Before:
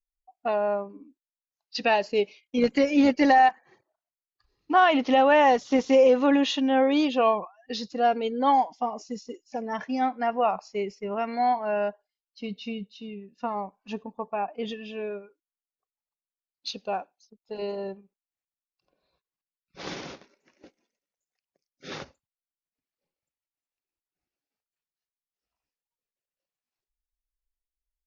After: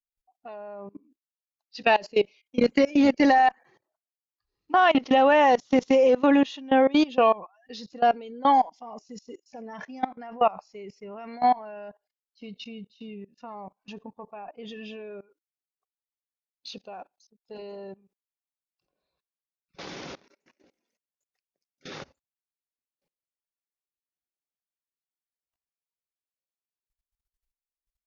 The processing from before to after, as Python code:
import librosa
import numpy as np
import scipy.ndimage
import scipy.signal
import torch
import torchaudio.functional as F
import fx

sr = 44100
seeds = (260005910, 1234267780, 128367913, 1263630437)

y = fx.cheby_harmonics(x, sr, harmonics=(4,), levels_db=(-39,), full_scale_db=-10.0)
y = fx.level_steps(y, sr, step_db=22)
y = y * 10.0 ** (4.5 / 20.0)